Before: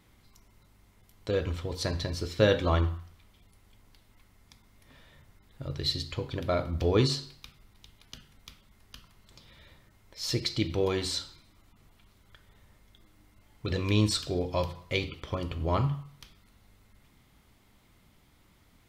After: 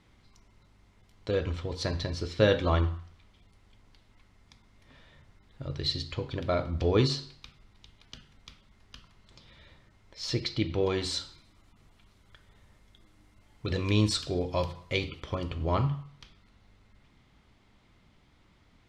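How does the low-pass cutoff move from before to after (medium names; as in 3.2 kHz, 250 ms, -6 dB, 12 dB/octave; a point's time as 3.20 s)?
10.20 s 6.2 kHz
10.67 s 3.5 kHz
11.16 s 9 kHz
15.17 s 9 kHz
16.03 s 5.2 kHz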